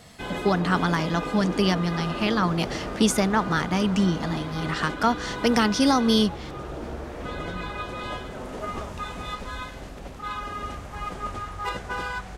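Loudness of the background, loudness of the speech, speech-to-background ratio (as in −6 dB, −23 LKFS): −33.0 LKFS, −24.0 LKFS, 9.0 dB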